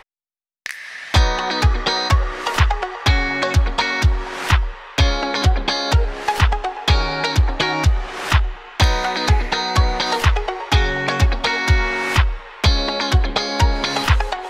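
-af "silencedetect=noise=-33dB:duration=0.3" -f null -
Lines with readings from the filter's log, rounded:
silence_start: 0.00
silence_end: 0.66 | silence_duration: 0.66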